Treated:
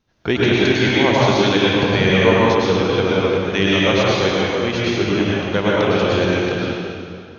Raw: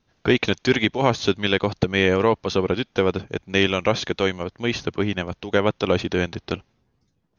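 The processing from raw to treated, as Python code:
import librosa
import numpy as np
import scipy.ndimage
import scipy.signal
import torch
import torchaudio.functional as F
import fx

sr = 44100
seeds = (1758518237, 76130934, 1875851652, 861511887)

y = fx.rev_plate(x, sr, seeds[0], rt60_s=2.3, hf_ratio=0.9, predelay_ms=90, drr_db=-6.5)
y = y * librosa.db_to_amplitude(-1.5)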